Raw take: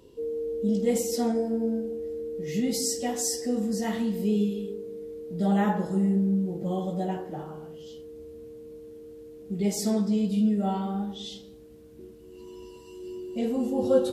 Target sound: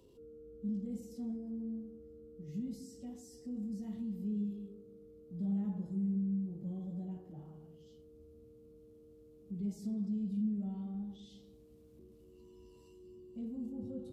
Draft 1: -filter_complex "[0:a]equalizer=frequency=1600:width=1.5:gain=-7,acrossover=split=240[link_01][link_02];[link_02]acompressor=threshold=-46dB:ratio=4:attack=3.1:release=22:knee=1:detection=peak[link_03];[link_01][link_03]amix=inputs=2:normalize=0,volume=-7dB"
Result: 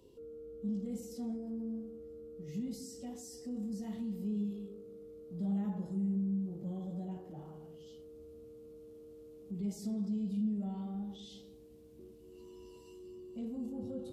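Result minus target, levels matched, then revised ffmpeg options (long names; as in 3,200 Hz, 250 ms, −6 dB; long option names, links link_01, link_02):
downward compressor: peak gain reduction −8 dB
-filter_complex "[0:a]equalizer=frequency=1600:width=1.5:gain=-7,acrossover=split=240[link_01][link_02];[link_02]acompressor=threshold=-56.5dB:ratio=4:attack=3.1:release=22:knee=1:detection=peak[link_03];[link_01][link_03]amix=inputs=2:normalize=0,volume=-7dB"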